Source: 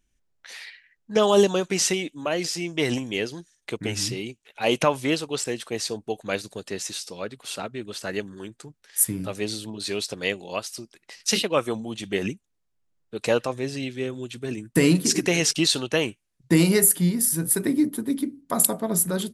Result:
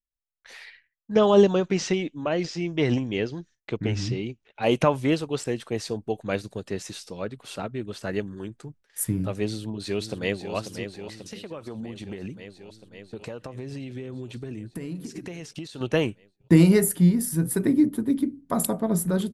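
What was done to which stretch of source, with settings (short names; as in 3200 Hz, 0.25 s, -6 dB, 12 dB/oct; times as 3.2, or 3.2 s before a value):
1.15–4.63 LPF 6300 Hz 24 dB/oct
9.46–10.54 echo throw 0.54 s, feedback 75%, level -8.5 dB
11.24–15.81 compressor 10:1, threshold -33 dBFS
whole clip: high shelf 2700 Hz -9.5 dB; expander -50 dBFS; low shelf 140 Hz +10.5 dB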